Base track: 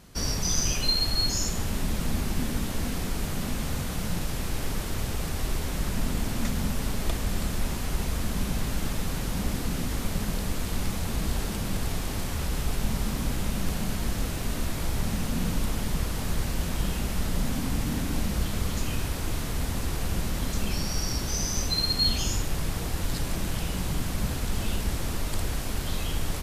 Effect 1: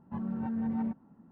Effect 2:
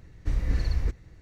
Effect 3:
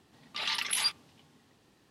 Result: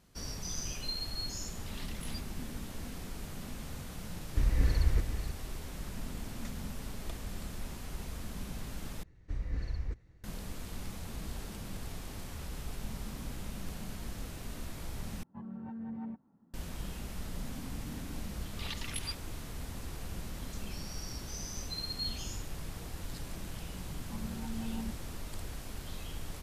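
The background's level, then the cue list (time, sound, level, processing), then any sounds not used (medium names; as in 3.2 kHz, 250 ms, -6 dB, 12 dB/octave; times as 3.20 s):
base track -12.5 dB
1.30 s: add 3 -17 dB + saturation -20.5 dBFS
4.10 s: add 2 -1.5 dB + delay 490 ms -10 dB
9.03 s: replace with 2 -10 dB + treble shelf 3.9 kHz -4 dB
15.23 s: replace with 1 -9 dB
18.23 s: add 3 -8.5 dB + volume shaper 119 bpm, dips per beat 2, -17 dB, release 217 ms
23.99 s: add 1 -8 dB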